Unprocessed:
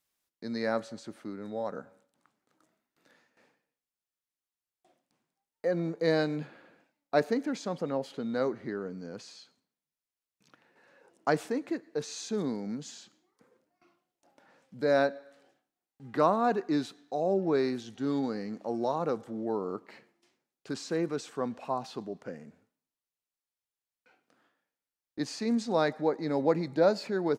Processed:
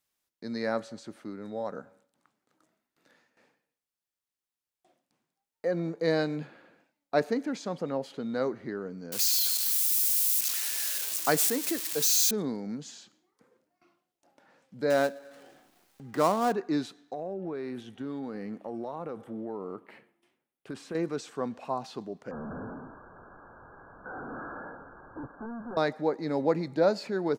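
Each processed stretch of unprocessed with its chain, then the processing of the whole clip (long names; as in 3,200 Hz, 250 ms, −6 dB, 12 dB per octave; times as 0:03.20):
0:09.12–0:12.31: spike at every zero crossing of −27.5 dBFS + high-shelf EQ 2,300 Hz +9.5 dB
0:14.90–0:16.53: gap after every zero crossing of 0.1 ms + upward compression, threshold −40 dBFS
0:17.13–0:20.95: flat-topped bell 5,500 Hz −10 dB 1.1 octaves + downward compressor, threshold −32 dBFS
0:22.31–0:25.77: sign of each sample alone + linear-phase brick-wall low-pass 1,700 Hz
whole clip: no processing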